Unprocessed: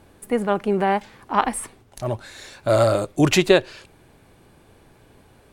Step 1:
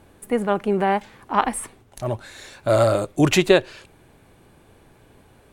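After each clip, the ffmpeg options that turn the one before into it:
-af "equalizer=f=4.9k:t=o:w=0.5:g=-3"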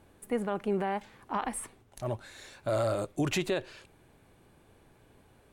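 -af "alimiter=limit=-12dB:level=0:latency=1:release=48,volume=-8dB"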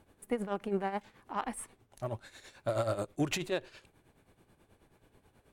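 -af "aeval=exprs='0.106*(cos(1*acos(clip(val(0)/0.106,-1,1)))-cos(1*PI/2))+0.00237*(cos(7*acos(clip(val(0)/0.106,-1,1)))-cos(7*PI/2))':c=same,tremolo=f=9.3:d=0.69"

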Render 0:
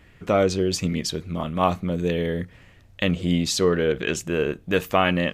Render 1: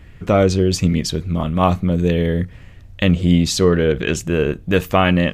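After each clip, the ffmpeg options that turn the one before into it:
-af "lowshelf=f=150:g=11.5,volume=3.5dB"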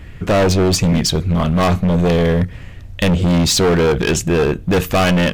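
-af "asoftclip=type=hard:threshold=-18dB,volume=7dB"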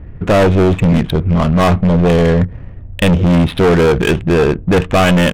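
-af "aresample=8000,aresample=44100,adynamicsmooth=sensitivity=2:basefreq=780,volume=3.5dB"

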